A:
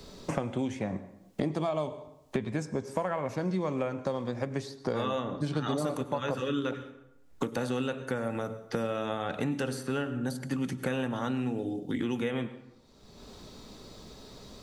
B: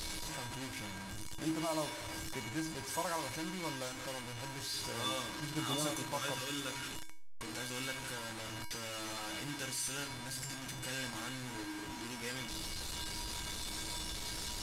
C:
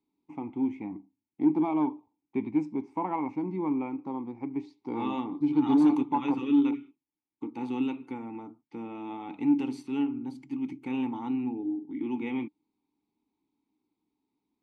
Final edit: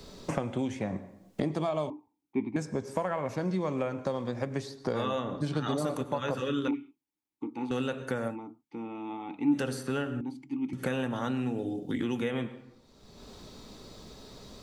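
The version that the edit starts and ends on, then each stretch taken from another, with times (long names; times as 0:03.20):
A
0:01.90–0:02.56: punch in from C
0:06.68–0:07.71: punch in from C
0:08.32–0:09.53: punch in from C, crossfade 0.10 s
0:10.21–0:10.73: punch in from C
not used: B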